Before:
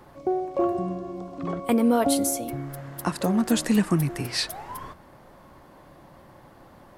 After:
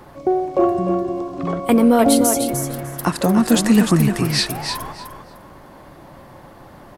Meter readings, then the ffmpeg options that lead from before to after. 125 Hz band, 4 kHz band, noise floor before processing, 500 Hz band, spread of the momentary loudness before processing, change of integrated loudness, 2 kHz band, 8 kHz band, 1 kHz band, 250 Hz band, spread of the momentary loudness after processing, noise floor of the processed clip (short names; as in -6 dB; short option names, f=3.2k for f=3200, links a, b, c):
+8.0 dB, +8.0 dB, -51 dBFS, +8.0 dB, 15 LU, +8.0 dB, +8.0 dB, +8.0 dB, +8.0 dB, +8.0 dB, 12 LU, -43 dBFS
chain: -af "aecho=1:1:301|602|903:0.447|0.0849|0.0161,acontrast=47,volume=1.5dB"